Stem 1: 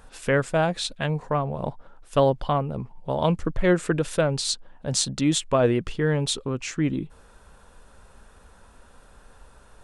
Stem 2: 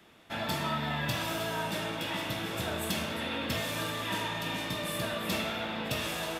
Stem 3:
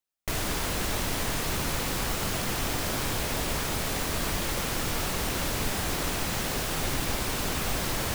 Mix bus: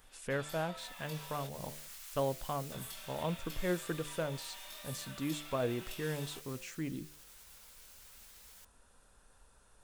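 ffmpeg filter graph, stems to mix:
-filter_complex "[0:a]bandreject=f=74.26:t=h:w=4,bandreject=f=148.52:t=h:w=4,bandreject=f=222.78:t=h:w=4,bandreject=f=297.04:t=h:w=4,bandreject=f=371.3:t=h:w=4,bandreject=f=445.56:t=h:w=4,bandreject=f=519.82:t=h:w=4,bandreject=f=594.08:t=h:w=4,bandreject=f=668.34:t=h:w=4,acrossover=split=2600[s0][s1];[s1]acompressor=threshold=0.01:ratio=4:attack=1:release=60[s2];[s0][s2]amix=inputs=2:normalize=0,volume=0.2[s3];[1:a]highpass=660,aecho=1:1:5.2:0.65,volume=0.398,asplit=3[s4][s5][s6];[s4]atrim=end=1.47,asetpts=PTS-STARTPTS,afade=t=out:st=1.466:d=0.004:c=hsin[s7];[s5]atrim=start=1.47:end=2.72,asetpts=PTS-STARTPTS,volume=0[s8];[s6]atrim=start=2.72,asetpts=PTS-STARTPTS,afade=t=in:d=0.004:c=hsin[s9];[s7][s8][s9]concat=n=3:v=0:a=1[s10];[2:a]highpass=1400,alimiter=level_in=1.58:limit=0.0631:level=0:latency=1:release=86,volume=0.631,adelay=500,volume=0.15,afade=t=out:st=6.27:d=0.55:silence=0.446684[s11];[s10][s11]amix=inputs=2:normalize=0,flanger=delay=17.5:depth=5.2:speed=1.2,acompressor=threshold=0.00316:ratio=6,volume=1[s12];[s3][s12]amix=inputs=2:normalize=0,highshelf=f=5000:g=11.5"

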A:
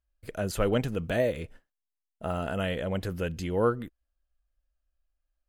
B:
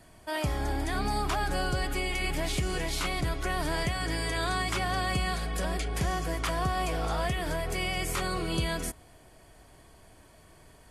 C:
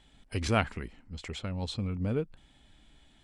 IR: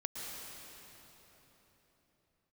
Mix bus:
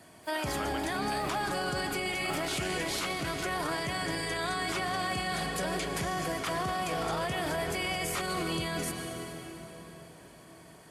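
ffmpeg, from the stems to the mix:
-filter_complex "[0:a]highpass=f=790:w=0.5412,highpass=f=790:w=1.3066,volume=0.75,asplit=2[s0][s1];[s1]volume=0.141[s2];[1:a]highpass=140,volume=0.891,asplit=2[s3][s4];[s4]volume=0.708[s5];[3:a]atrim=start_sample=2205[s6];[s2][s5]amix=inputs=2:normalize=0[s7];[s7][s6]afir=irnorm=-1:irlink=0[s8];[s0][s3][s8]amix=inputs=3:normalize=0,alimiter=limit=0.0668:level=0:latency=1:release=25"

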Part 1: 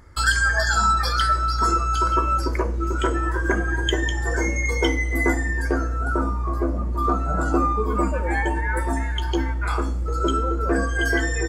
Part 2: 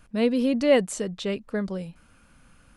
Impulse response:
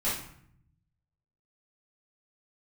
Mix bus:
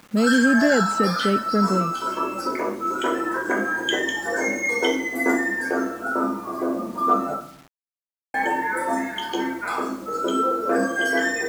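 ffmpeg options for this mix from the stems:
-filter_complex "[0:a]equalizer=f=580:w=2.4:g=3,volume=0.335,asplit=3[s0][s1][s2];[s0]atrim=end=7.34,asetpts=PTS-STARTPTS,afade=t=out:st=7.336:d=0.004:c=hsin[s3];[s1]atrim=start=7.34:end=8.34,asetpts=PTS-STARTPTS,volume=0[s4];[s2]atrim=start=8.34,asetpts=PTS-STARTPTS,afade=t=in:d=0.004:c=hsin[s5];[s3][s4][s5]concat=n=3:v=0:a=1,asplit=2[s6][s7];[s7]volume=0.473[s8];[1:a]aemphasis=mode=reproduction:type=riaa,alimiter=limit=0.126:level=0:latency=1,volume=1,asplit=2[s9][s10];[s10]apad=whole_len=506278[s11];[s6][s11]sidechaincompress=threshold=0.0178:ratio=8:attack=16:release=506[s12];[2:a]atrim=start_sample=2205[s13];[s8][s13]afir=irnorm=-1:irlink=0[s14];[s12][s9][s14]amix=inputs=3:normalize=0,highpass=f=200:w=0.5412,highpass=f=200:w=1.3066,acontrast=52,acrusher=bits=7:mix=0:aa=0.000001"

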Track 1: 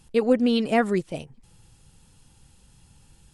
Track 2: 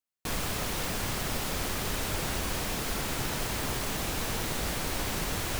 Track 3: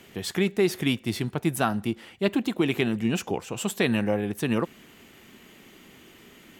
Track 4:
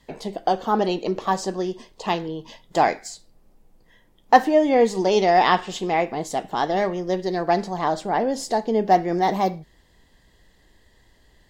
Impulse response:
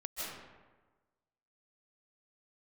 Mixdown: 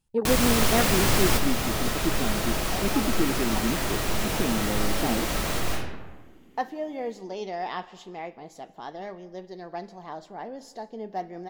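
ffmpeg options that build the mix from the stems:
-filter_complex "[0:a]afwtdn=0.0398,volume=0.631,asplit=2[s0][s1];[1:a]acontrast=53,volume=0.944,asplit=2[s2][s3];[s3]volume=0.708[s4];[2:a]equalizer=f=280:t=o:w=1.6:g=14,adelay=600,volume=0.188[s5];[3:a]equalizer=f=8500:t=o:w=0.21:g=-12.5,adelay=2250,volume=0.158,asplit=2[s6][s7];[s7]volume=0.0944[s8];[s1]apad=whole_len=246860[s9];[s2][s9]sidechaingate=range=0.0224:threshold=0.00126:ratio=16:detection=peak[s10];[4:a]atrim=start_sample=2205[s11];[s4][s8]amix=inputs=2:normalize=0[s12];[s12][s11]afir=irnorm=-1:irlink=0[s13];[s0][s10][s5][s6][s13]amix=inputs=5:normalize=0"

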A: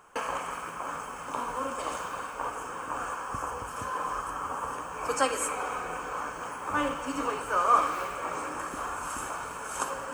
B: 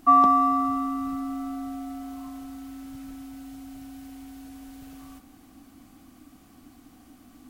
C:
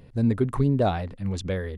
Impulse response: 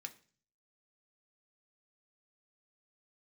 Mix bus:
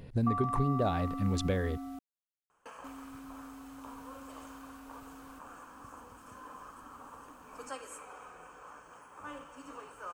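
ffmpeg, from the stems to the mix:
-filter_complex "[0:a]bandreject=f=2200:w=21,adelay=2500,volume=0.15[s0];[1:a]acompressor=threshold=0.0562:ratio=6,adelay=200,volume=0.398,asplit=3[s1][s2][s3];[s1]atrim=end=1.99,asetpts=PTS-STARTPTS,afade=t=out:st=1.986:d=0.004:c=hsin[s4];[s2]atrim=start=1.99:end=2.84,asetpts=PTS-STARTPTS,volume=0[s5];[s3]atrim=start=2.84,asetpts=PTS-STARTPTS,afade=t=in:d=0.004:c=hsin[s6];[s4][s5][s6]concat=n=3:v=0:a=1[s7];[2:a]acompressor=threshold=0.0398:ratio=5,volume=1.12[s8];[s0][s7][s8]amix=inputs=3:normalize=0"

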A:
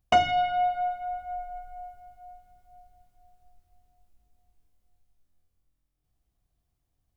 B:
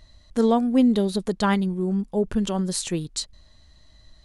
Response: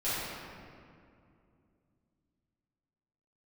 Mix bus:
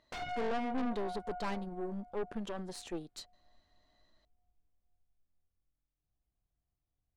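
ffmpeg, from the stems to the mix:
-filter_complex "[0:a]aeval=exprs='0.0631*(abs(mod(val(0)/0.0631+3,4)-2)-1)':c=same,volume=0.531[s0];[1:a]highpass=290,volume=0.562[s1];[s0][s1]amix=inputs=2:normalize=0,lowpass=f=1600:p=1,aeval=exprs='(tanh(39.8*val(0)+0.65)-tanh(0.65))/39.8':c=same"

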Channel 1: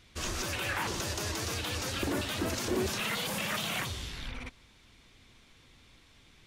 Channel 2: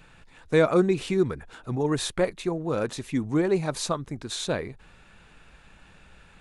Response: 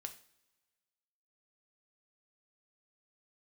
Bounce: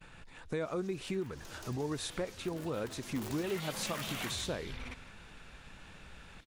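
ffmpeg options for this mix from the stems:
-filter_complex "[0:a]aeval=exprs='(mod(15*val(0)+1,2)-1)/15':c=same,adelay=450,volume=0.668,afade=t=in:st=1.28:d=0.47:silence=0.473151,afade=t=in:st=3.03:d=0.78:silence=0.316228,asplit=3[s0][s1][s2];[s1]volume=0.188[s3];[s2]volume=0.224[s4];[1:a]alimiter=limit=0.168:level=0:latency=1:release=219,acompressor=threshold=0.00794:ratio=2,volume=1,asplit=2[s5][s6];[s6]apad=whole_len=304889[s7];[s0][s7]sidechaincompress=threshold=0.01:ratio=8:attack=16:release=390[s8];[2:a]atrim=start_sample=2205[s9];[s3][s9]afir=irnorm=-1:irlink=0[s10];[s4]aecho=0:1:162:1[s11];[s8][s5][s10][s11]amix=inputs=4:normalize=0,agate=range=0.0631:threshold=0.002:ratio=16:detection=peak"

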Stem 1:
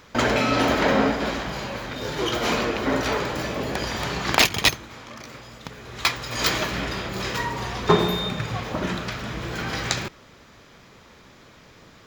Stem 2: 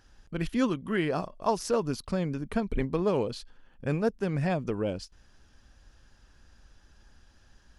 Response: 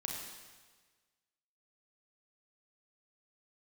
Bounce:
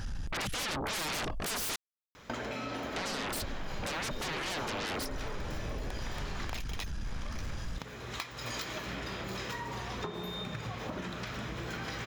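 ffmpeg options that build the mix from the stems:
-filter_complex "[0:a]bandreject=f=4600:w=22,acompressor=threshold=0.0282:ratio=6,adelay=2150,volume=0.668[s0];[1:a]lowshelf=f=250:t=q:w=1.5:g=8,acompressor=threshold=0.0562:ratio=10,aeval=exprs='0.0299*sin(PI/2*4.47*val(0)/0.0299)':c=same,volume=1.19,asplit=3[s1][s2][s3];[s1]atrim=end=1.76,asetpts=PTS-STARTPTS,afade=t=out:st=1.756:d=0.004:c=hsin[s4];[s2]atrim=start=1.76:end=2.96,asetpts=PTS-STARTPTS,volume=0[s5];[s3]atrim=start=2.96,asetpts=PTS-STARTPTS,afade=t=in:d=0.004:c=hsin[s6];[s4][s5][s6]concat=n=3:v=0:a=1[s7];[s0][s7]amix=inputs=2:normalize=0,acompressor=threshold=0.0224:ratio=6"

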